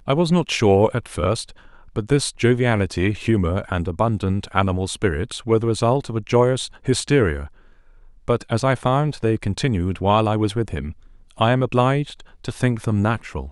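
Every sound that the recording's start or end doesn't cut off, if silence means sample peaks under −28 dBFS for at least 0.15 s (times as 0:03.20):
0:01.96–0:06.67
0:06.87–0:07.46
0:08.28–0:10.91
0:11.40–0:12.20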